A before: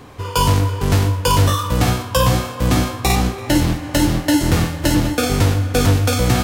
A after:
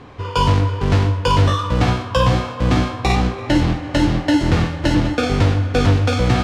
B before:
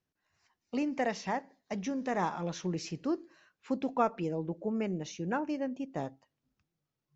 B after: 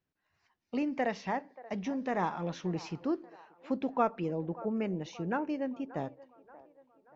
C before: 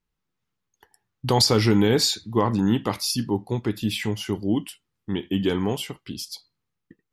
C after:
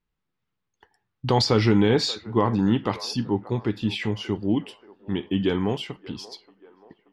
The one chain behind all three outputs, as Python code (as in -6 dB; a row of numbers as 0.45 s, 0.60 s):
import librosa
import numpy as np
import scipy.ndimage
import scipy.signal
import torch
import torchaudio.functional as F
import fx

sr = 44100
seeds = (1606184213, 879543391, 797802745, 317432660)

p1 = scipy.signal.sosfilt(scipy.signal.butter(2, 4100.0, 'lowpass', fs=sr, output='sos'), x)
y = p1 + fx.echo_wet_bandpass(p1, sr, ms=581, feedback_pct=50, hz=810.0, wet_db=-17, dry=0)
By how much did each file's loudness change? -0.5 LU, 0.0 LU, -0.5 LU